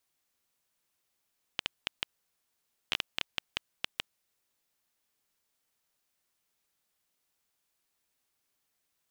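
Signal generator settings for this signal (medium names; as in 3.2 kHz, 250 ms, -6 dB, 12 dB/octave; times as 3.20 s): random clicks 5.1 per s -11 dBFS 2.79 s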